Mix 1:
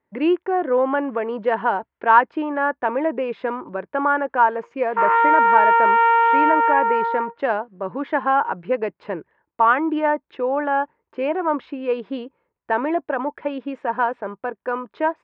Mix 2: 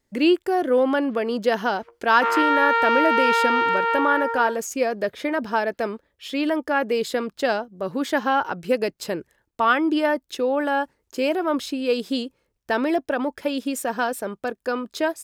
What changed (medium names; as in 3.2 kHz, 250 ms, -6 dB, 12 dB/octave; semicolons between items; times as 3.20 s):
background: entry -2.75 s; master: remove cabinet simulation 100–2300 Hz, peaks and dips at 110 Hz -8 dB, 240 Hz -5 dB, 970 Hz +9 dB